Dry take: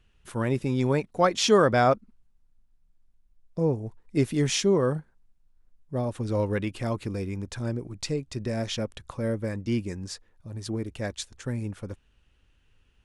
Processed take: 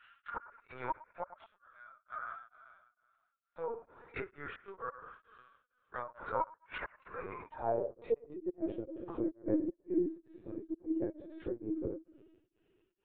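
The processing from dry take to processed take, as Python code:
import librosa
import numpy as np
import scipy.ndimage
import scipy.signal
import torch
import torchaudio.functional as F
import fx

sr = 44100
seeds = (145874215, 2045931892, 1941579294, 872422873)

y = fx.tilt_eq(x, sr, slope=4.0)
y = fx.hum_notches(y, sr, base_hz=50, count=7)
y = fx.rev_double_slope(y, sr, seeds[0], early_s=0.44, late_s=1.6, knee_db=-18, drr_db=-2.0)
y = fx.rider(y, sr, range_db=4, speed_s=0.5)
y = fx.filter_sweep_bandpass(y, sr, from_hz=1400.0, to_hz=330.0, start_s=7.16, end_s=8.31, q=6.6)
y = fx.gate_flip(y, sr, shuts_db=-31.0, range_db=-39)
y = fx.echo_wet_bandpass(y, sr, ms=110, feedback_pct=36, hz=1200.0, wet_db=-16.0)
y = fx.env_lowpass_down(y, sr, base_hz=930.0, full_db=-47.0)
y = fx.lpc_vocoder(y, sr, seeds[1], excitation='pitch_kept', order=16)
y = y * np.abs(np.cos(np.pi * 2.2 * np.arange(len(y)) / sr))
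y = F.gain(torch.from_numpy(y), 14.0).numpy()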